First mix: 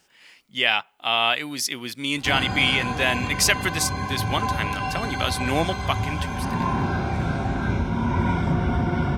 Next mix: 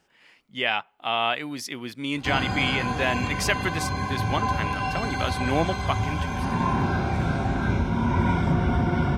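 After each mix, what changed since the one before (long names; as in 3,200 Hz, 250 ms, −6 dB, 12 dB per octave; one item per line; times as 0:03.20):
speech: add high-shelf EQ 2,800 Hz −12 dB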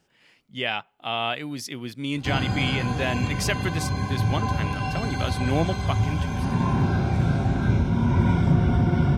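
master: add octave-band graphic EQ 125/1,000/2,000 Hz +6/−4/−3 dB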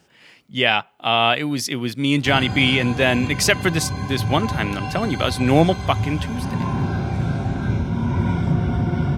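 speech +9.5 dB
master: add high-pass filter 54 Hz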